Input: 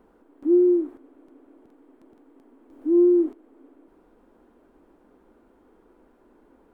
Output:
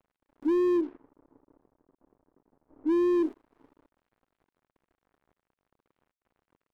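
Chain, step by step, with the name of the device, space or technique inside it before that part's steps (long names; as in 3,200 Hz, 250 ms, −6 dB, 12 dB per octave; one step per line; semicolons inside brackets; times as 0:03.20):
early transistor amplifier (dead-zone distortion −51.5 dBFS; slew-rate limiting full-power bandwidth 29 Hz)
0:00.81–0:03.21: low-pass that shuts in the quiet parts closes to 890 Hz, open at −24.5 dBFS
level −1 dB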